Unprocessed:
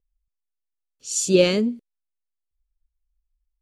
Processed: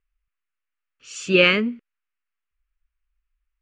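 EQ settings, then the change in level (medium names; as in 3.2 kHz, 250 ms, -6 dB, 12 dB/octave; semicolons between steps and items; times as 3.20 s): distance through air 140 m; high-order bell 1.8 kHz +15.5 dB; -1.5 dB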